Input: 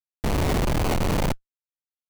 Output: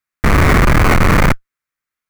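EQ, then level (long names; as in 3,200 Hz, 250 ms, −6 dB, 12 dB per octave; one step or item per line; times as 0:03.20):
low-shelf EQ 280 Hz +5 dB
flat-topped bell 1,600 Hz +11 dB 1.3 octaves
+8.0 dB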